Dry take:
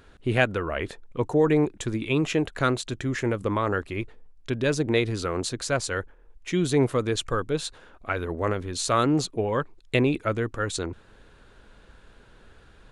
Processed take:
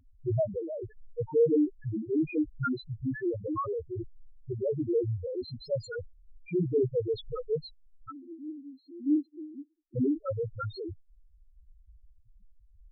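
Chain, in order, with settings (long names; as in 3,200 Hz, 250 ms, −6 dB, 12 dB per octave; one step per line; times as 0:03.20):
0:08.10–0:09.96: formant filter u
spectral peaks only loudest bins 1
level +4 dB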